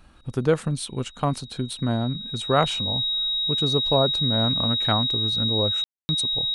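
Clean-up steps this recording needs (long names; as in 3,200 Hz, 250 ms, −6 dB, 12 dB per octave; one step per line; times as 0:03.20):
notch filter 3,800 Hz, Q 30
ambience match 0:05.84–0:06.09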